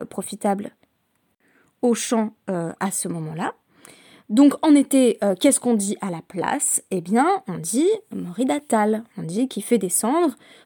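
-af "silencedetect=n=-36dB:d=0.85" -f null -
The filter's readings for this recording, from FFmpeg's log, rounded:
silence_start: 0.68
silence_end: 1.83 | silence_duration: 1.15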